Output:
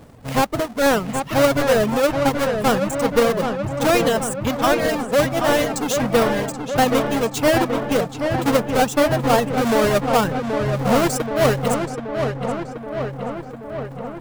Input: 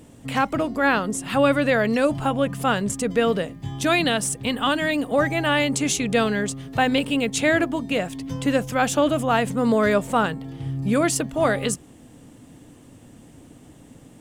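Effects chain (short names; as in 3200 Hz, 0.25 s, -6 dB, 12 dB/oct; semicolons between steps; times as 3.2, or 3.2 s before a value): half-waves squared off; bell 300 Hz -6 dB 0.9 oct; reverb removal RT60 1.6 s; EQ curve 190 Hz 0 dB, 460 Hz +3 dB, 2500 Hz -4 dB; on a send: darkening echo 0.778 s, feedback 70%, low-pass 3200 Hz, level -6 dB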